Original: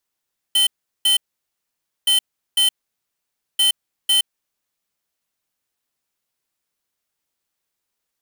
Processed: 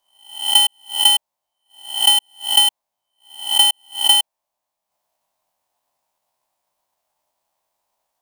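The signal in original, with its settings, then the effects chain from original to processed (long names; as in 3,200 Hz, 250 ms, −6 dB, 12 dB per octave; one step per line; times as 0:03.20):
beeps in groups square 3,070 Hz, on 0.12 s, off 0.38 s, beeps 2, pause 0.90 s, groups 3, −15.5 dBFS
peak hold with a rise ahead of every peak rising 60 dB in 0.54 s
flat-topped bell 780 Hz +15 dB 1.1 octaves
transient designer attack +9 dB, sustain −6 dB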